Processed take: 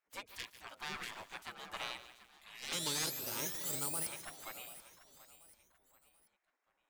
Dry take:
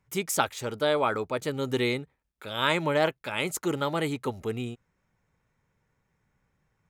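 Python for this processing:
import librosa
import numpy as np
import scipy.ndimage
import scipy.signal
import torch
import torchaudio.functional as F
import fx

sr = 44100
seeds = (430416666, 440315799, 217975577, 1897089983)

p1 = fx.high_shelf(x, sr, hz=2000.0, db=-9.5)
p2 = fx.spec_paint(p1, sr, seeds[0], shape='rise', start_s=2.72, length_s=1.35, low_hz=1700.0, high_hz=5200.0, level_db=-18.0)
p3 = np.clip(p2, -10.0 ** (-24.5 / 20.0), 10.0 ** (-24.5 / 20.0))
p4 = p3 + fx.echo_feedback(p3, sr, ms=735, feedback_pct=38, wet_db=-16.0, dry=0)
p5 = fx.spec_gate(p4, sr, threshold_db=-20, keep='weak')
p6 = fx.echo_crushed(p5, sr, ms=148, feedback_pct=55, bits=9, wet_db=-13.0)
y = p6 * librosa.db_to_amplitude(-1.5)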